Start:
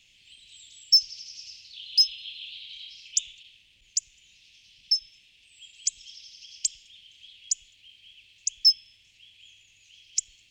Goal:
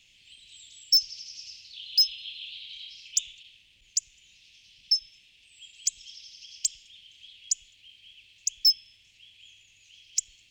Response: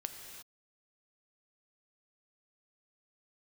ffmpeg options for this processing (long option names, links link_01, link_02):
-af "volume=15dB,asoftclip=hard,volume=-15dB"